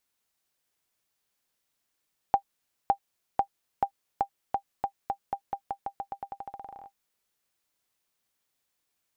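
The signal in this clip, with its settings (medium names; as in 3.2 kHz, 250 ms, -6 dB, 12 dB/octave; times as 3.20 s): bouncing ball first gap 0.56 s, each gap 0.88, 795 Hz, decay 84 ms -10.5 dBFS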